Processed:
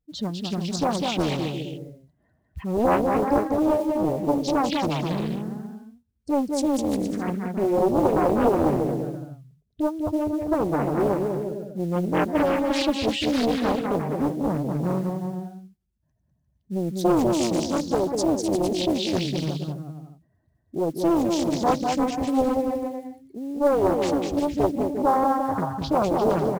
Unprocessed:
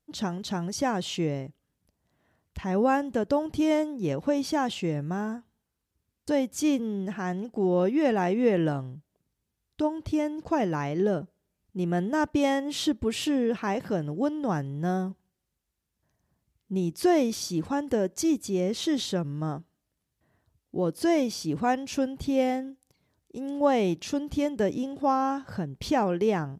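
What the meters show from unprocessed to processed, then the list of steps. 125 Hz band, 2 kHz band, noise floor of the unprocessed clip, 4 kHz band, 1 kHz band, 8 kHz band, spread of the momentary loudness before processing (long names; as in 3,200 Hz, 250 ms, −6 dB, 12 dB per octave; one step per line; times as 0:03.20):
+3.5 dB, +0.5 dB, −82 dBFS, +3.5 dB, +5.0 dB, +1.5 dB, 9 LU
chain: expanding power law on the bin magnitudes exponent 1.9
dynamic equaliser 1,600 Hz, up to +6 dB, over −45 dBFS, Q 1.1
noise that follows the level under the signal 28 dB
bouncing-ball delay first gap 200 ms, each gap 0.75×, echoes 5
highs frequency-modulated by the lows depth 0.9 ms
level +2 dB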